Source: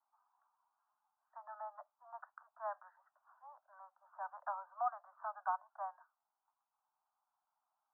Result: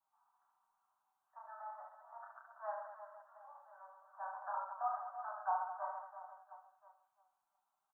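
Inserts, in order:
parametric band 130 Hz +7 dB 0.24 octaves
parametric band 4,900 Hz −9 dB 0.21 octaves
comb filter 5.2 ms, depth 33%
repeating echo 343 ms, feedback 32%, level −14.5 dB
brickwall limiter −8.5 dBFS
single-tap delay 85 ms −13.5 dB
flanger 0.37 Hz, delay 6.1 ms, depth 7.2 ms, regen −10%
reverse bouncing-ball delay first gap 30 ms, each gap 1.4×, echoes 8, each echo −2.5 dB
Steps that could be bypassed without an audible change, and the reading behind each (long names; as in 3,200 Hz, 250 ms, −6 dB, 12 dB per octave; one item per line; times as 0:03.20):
parametric band 130 Hz: nothing at its input below 540 Hz
parametric band 4,900 Hz: nothing at its input above 1,700 Hz
brickwall limiter −8.5 dBFS: peak of its input −24.0 dBFS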